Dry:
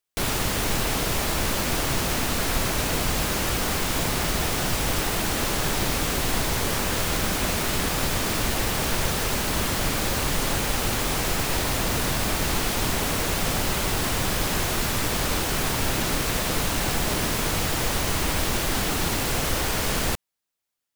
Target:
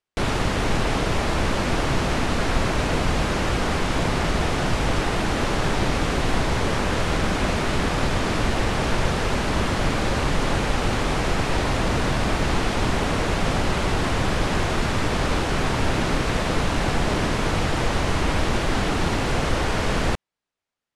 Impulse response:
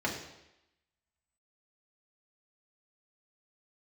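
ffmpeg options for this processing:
-af "lowpass=frequency=11000:width=0.5412,lowpass=frequency=11000:width=1.3066,aemphasis=mode=reproduction:type=75fm,volume=3.5dB"

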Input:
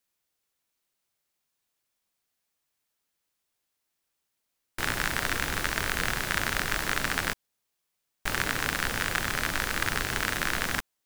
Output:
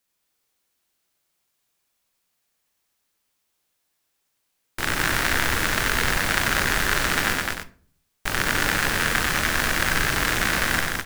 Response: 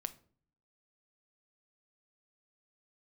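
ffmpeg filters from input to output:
-filter_complex "[0:a]aecho=1:1:40.82|207:0.316|0.708,asplit=2[link_01][link_02];[1:a]atrim=start_sample=2205,adelay=92[link_03];[link_02][link_03]afir=irnorm=-1:irlink=0,volume=-3dB[link_04];[link_01][link_04]amix=inputs=2:normalize=0,volume=3.5dB"

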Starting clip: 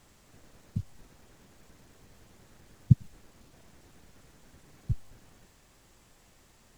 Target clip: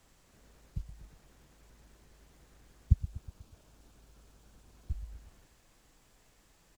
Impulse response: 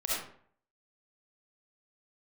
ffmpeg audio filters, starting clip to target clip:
-filter_complex "[0:a]asettb=1/sr,asplit=3[link_01][link_02][link_03];[link_01]atrim=end=3.014[link_04];[link_02]atrim=start=3.01:end=4.9,asetpts=PTS-STARTPTS,afade=type=in:duration=0.004:curve=qsin,afade=type=out:start_time=1.886:duration=0.004:curve=qsin,equalizer=frequency=2000:width=4.1:gain=-7[link_05];[link_03]atrim=start=4.896[link_06];[link_04][link_05]acrossfade=duration=0.004:curve1=hsin:curve2=qsin[link_07];[link_07][link_06]acrossfade=duration=0.004:curve1=qsin:curve2=hsin,aecho=1:1:122|244|366|488|610:0.2|0.108|0.0582|0.0314|0.017,afreqshift=-53,volume=-4.5dB"

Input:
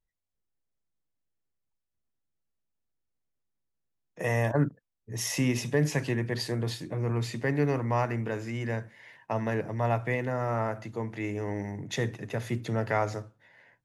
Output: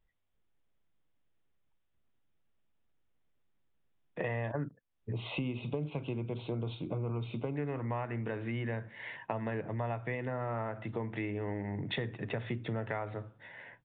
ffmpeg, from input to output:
ffmpeg -i in.wav -filter_complex "[0:a]aresample=8000,aresample=44100,acompressor=threshold=-42dB:ratio=6,asettb=1/sr,asplit=3[link_01][link_02][link_03];[link_01]atrim=end=5.124[link_04];[link_02]atrim=start=5.12:end=7.56,asetpts=PTS-STARTPTS,afade=type=in:duration=0.004:curve=qsin,afade=type=out:start_time=2.436:duration=0.004:curve=qsin,asuperstop=centerf=1800:order=4:qfactor=1.9[link_05];[link_03]atrim=start=7.556[link_06];[link_04][link_05]acrossfade=duration=0.004:curve1=hsin:curve2=qsin[link_07];[link_07][link_06]acrossfade=duration=0.004:curve1=qsin:curve2=hsin,volume=8dB" out.wav

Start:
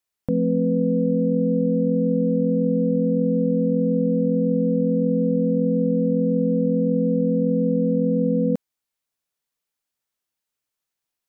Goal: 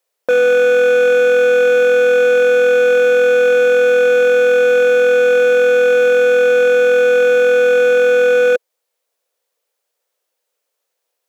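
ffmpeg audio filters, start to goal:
ffmpeg -i in.wav -af "highpass=frequency=500:width_type=q:width=4.9,asoftclip=type=hard:threshold=-19dB,volume=8.5dB" out.wav

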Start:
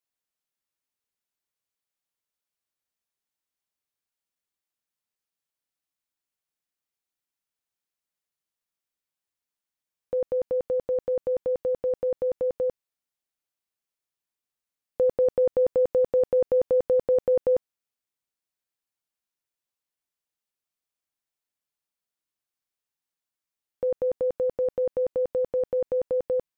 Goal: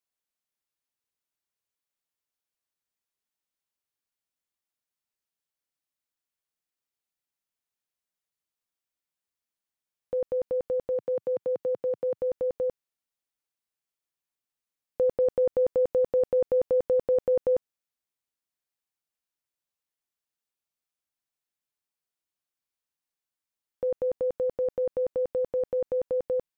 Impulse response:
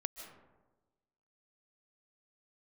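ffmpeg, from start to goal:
-filter_complex "[0:a]asplit=3[link_01][link_02][link_03];[link_01]afade=type=out:start_time=10.9:duration=0.02[link_04];[link_02]highpass=frequency=120:width=0.5412,highpass=frequency=120:width=1.3066,afade=type=in:start_time=10.9:duration=0.02,afade=type=out:start_time=12.15:duration=0.02[link_05];[link_03]afade=type=in:start_time=12.15:duration=0.02[link_06];[link_04][link_05][link_06]amix=inputs=3:normalize=0,volume=-2dB"

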